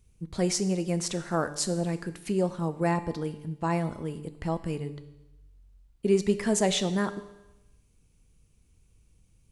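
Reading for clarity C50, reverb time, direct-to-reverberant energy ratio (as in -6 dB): 14.0 dB, 0.95 s, 11.0 dB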